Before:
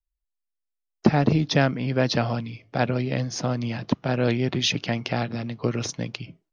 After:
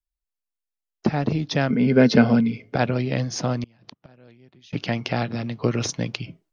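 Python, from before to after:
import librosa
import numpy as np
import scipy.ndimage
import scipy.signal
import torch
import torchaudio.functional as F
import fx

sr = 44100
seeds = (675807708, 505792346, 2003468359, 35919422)

y = fx.rider(x, sr, range_db=4, speed_s=2.0)
y = fx.small_body(y, sr, hz=(230.0, 420.0, 1500.0, 2100.0), ring_ms=45, db=15, at=(1.7, 2.76))
y = fx.gate_flip(y, sr, shuts_db=-21.0, range_db=-29, at=(3.63, 4.73))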